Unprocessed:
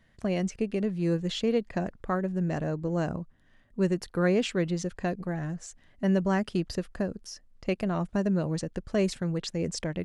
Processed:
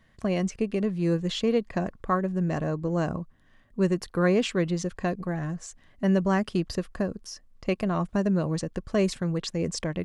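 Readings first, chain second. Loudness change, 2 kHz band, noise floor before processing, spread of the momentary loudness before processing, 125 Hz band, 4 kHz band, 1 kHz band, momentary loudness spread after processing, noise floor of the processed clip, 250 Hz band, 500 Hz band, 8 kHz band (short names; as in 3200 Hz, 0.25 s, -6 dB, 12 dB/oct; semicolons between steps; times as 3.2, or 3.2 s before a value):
+2.0 dB, +2.0 dB, -62 dBFS, 8 LU, +2.0 dB, +2.0 dB, +4.0 dB, 8 LU, -60 dBFS, +2.0 dB, +2.0 dB, +2.0 dB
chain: small resonant body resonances 1100 Hz, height 9 dB; gain +2 dB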